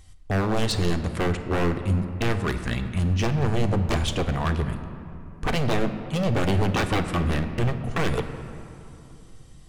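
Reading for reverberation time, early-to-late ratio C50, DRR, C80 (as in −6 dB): 2.9 s, 9.5 dB, 7.0 dB, 10.5 dB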